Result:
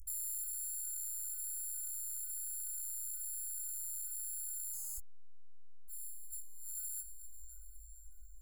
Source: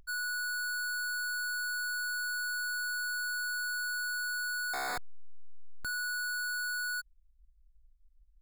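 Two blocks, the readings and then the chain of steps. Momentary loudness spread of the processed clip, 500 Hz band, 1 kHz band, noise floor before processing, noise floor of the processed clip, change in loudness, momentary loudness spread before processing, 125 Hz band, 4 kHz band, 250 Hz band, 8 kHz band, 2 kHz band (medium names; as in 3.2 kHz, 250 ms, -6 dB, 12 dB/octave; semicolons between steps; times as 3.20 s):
15 LU, under -40 dB, under -40 dB, -64 dBFS, -51 dBFS, -6.0 dB, 3 LU, no reading, -25.0 dB, under -25 dB, +2.5 dB, under -40 dB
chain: peaking EQ 13 kHz +10 dB 2.3 oct; peak limiter -30.5 dBFS, peak gain reduction 6.5 dB; peaking EQ 1.2 kHz +7.5 dB 1.3 oct; compression, threshold -37 dBFS, peak gain reduction 4 dB; inverse Chebyshev band-stop 160–3900 Hz, stop band 40 dB; echo that smears into a reverb 506 ms, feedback 44%, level -11 dB; chorus 1.1 Hz, delay 17.5 ms, depth 4.9 ms; transformer saturation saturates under 97 Hz; trim +11.5 dB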